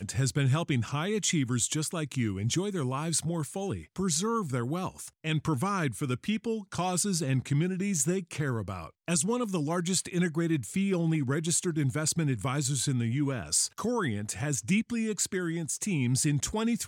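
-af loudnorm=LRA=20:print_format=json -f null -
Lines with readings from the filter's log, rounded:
"input_i" : "-29.5",
"input_tp" : "-13.1",
"input_lra" : "1.9",
"input_thresh" : "-39.5",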